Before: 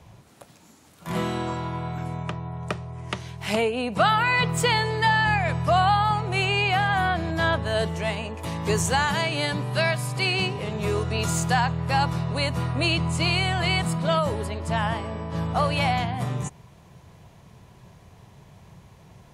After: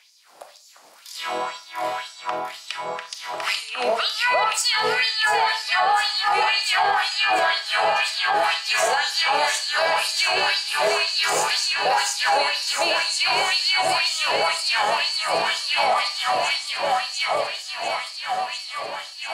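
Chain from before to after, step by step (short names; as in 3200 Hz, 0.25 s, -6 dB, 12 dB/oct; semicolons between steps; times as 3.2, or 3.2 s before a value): on a send: echo with dull and thin repeats by turns 0.348 s, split 1400 Hz, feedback 88%, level -2.5 dB; on the sum: LFO high-pass sine 2 Hz 550–5600 Hz; bell 4800 Hz +8 dB 0.3 oct; in parallel at -11.5 dB: soft clip -15.5 dBFS, distortion -12 dB; on the sum: Schroeder reverb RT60 0.34 s, combs from 28 ms, DRR 8.5 dB; limiter -11.5 dBFS, peak gain reduction 9 dB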